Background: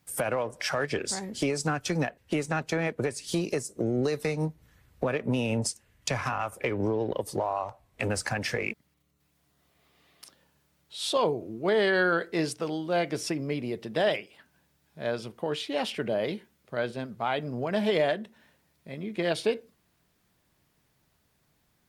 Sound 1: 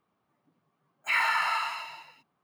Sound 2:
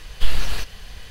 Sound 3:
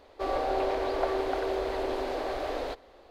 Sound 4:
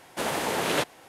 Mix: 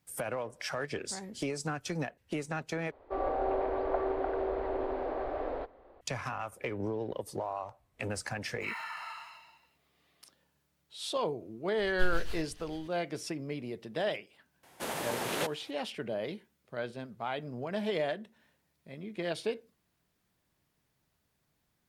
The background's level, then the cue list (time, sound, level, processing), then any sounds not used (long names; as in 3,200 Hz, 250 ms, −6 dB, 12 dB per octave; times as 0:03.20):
background −7 dB
0:02.91: overwrite with 3 −2.5 dB + low-pass filter 1,500 Hz
0:07.55: mix in 1 −14.5 dB
0:11.78: mix in 2 −13 dB + rotating-speaker cabinet horn 7 Hz
0:14.63: mix in 4 −8 dB + high-shelf EQ 12,000 Hz +8 dB